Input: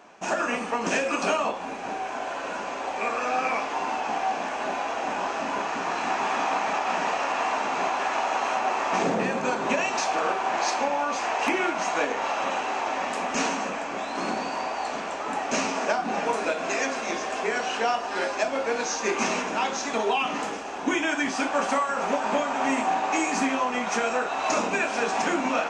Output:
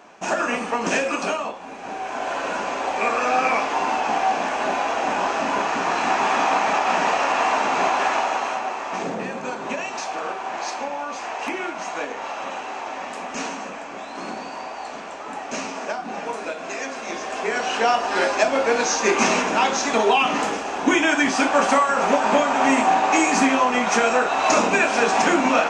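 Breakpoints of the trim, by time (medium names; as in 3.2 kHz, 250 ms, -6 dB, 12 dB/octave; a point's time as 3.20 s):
1.02 s +3.5 dB
1.61 s -4 dB
2.33 s +6 dB
8.07 s +6 dB
8.80 s -3 dB
16.84 s -3 dB
18.02 s +7 dB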